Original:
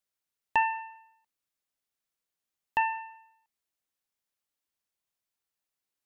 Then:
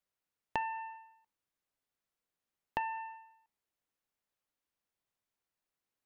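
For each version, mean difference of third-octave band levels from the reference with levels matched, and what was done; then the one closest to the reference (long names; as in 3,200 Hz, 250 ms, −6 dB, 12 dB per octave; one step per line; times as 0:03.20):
3.5 dB: high-shelf EQ 2,600 Hz −9.5 dB
hum removal 77.89 Hz, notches 17
downward compressor, threshold −36 dBFS, peak gain reduction 13 dB
tuned comb filter 490 Hz, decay 0.46 s, mix 40%
level +7 dB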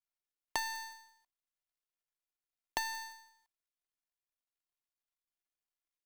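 12.5 dB: gap after every zero crossing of 0.14 ms
parametric band 230 Hz −4.5 dB 2.6 octaves
comb filter 2.9 ms, depth 54%
downward compressor 6 to 1, threshold −34 dBFS, peak gain reduction 11 dB
level +1.5 dB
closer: first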